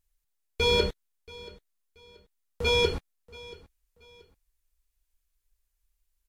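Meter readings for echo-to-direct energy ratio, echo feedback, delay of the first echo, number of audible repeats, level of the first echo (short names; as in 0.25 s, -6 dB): -20.5 dB, 32%, 0.68 s, 2, -21.0 dB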